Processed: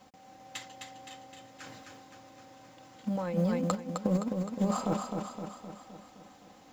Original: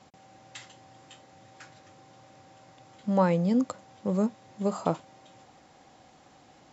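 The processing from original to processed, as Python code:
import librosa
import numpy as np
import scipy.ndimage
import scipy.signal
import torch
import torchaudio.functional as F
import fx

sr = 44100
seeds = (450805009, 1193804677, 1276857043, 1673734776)

y = fx.law_mismatch(x, sr, coded='A')
y = y + 0.44 * np.pad(y, (int(3.9 * sr / 1000.0), 0))[:len(y)]
y = fx.over_compress(y, sr, threshold_db=-29.0, ratio=-0.5)
y = fx.echo_feedback(y, sr, ms=259, feedback_pct=56, wet_db=-5)
y = fx.sustainer(y, sr, db_per_s=30.0, at=(1.62, 3.74), fade=0.02)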